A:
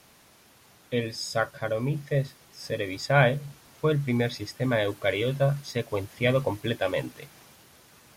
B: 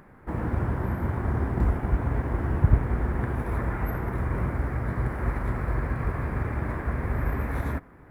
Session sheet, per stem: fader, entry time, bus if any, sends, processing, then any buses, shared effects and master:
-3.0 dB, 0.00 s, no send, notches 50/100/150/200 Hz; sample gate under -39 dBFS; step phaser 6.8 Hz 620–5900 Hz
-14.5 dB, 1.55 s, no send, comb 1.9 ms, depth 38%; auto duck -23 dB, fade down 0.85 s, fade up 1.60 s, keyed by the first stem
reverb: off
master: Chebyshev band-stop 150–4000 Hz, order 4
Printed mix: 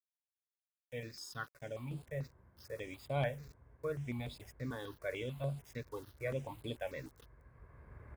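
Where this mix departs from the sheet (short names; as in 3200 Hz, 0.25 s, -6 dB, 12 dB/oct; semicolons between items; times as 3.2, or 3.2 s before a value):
stem A -3.0 dB -> -12.5 dB; master: missing Chebyshev band-stop 150–4000 Hz, order 4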